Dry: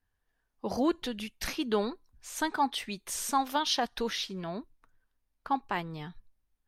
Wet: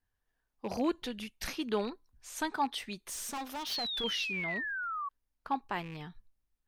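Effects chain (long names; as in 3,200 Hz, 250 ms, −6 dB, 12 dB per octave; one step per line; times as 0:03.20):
loose part that buzzes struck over −38 dBFS, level −35 dBFS
0:03.08–0:04.04: hard clipping −32.5 dBFS, distortion −9 dB
0:03.71–0:05.09: sound drawn into the spectrogram fall 1,100–4,600 Hz −33 dBFS
level −3.5 dB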